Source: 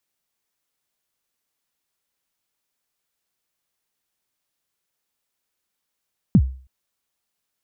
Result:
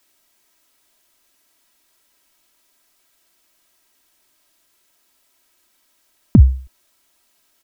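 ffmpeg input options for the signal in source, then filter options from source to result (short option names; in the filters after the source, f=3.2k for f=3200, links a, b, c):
-f lavfi -i "aevalsrc='0.473*pow(10,-3*t/0.42)*sin(2*PI*(240*0.061/log(65/240)*(exp(log(65/240)*min(t,0.061)/0.061)-1)+65*max(t-0.061,0)))':d=0.32:s=44100"
-af "equalizer=f=69:w=0.97:g=-4.5,aecho=1:1:3.1:0.59,alimiter=level_in=15.5dB:limit=-1dB:release=50:level=0:latency=1"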